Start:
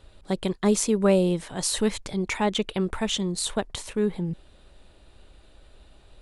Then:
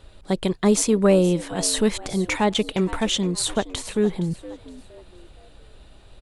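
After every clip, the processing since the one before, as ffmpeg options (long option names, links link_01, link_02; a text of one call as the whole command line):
ffmpeg -i in.wav -filter_complex "[0:a]asplit=4[link_01][link_02][link_03][link_04];[link_02]adelay=467,afreqshift=90,volume=-17.5dB[link_05];[link_03]adelay=934,afreqshift=180,volume=-26.9dB[link_06];[link_04]adelay=1401,afreqshift=270,volume=-36.2dB[link_07];[link_01][link_05][link_06][link_07]amix=inputs=4:normalize=0,acontrast=51,volume=-2dB" out.wav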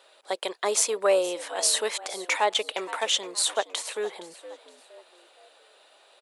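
ffmpeg -i in.wav -af "highpass=frequency=510:width=0.5412,highpass=frequency=510:width=1.3066" out.wav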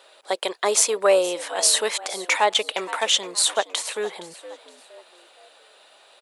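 ffmpeg -i in.wav -af "asubboost=boost=4:cutoff=160,volume=5dB" out.wav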